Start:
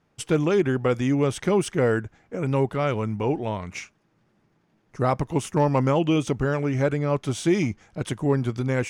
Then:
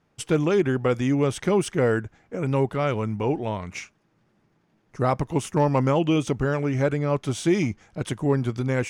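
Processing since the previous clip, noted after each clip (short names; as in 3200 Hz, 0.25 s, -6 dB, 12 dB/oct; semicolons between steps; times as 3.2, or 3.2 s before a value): nothing audible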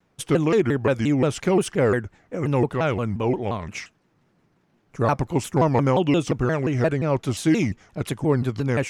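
shaped vibrato saw down 5.7 Hz, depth 250 cents; gain +1.5 dB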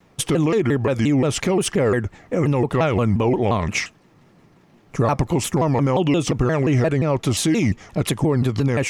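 notch 1500 Hz, Q 11; in parallel at -1 dB: compressor, threshold -29 dBFS, peak gain reduction 14 dB; on the sum: limiter -16.5 dBFS, peak gain reduction 9 dB; gain +6 dB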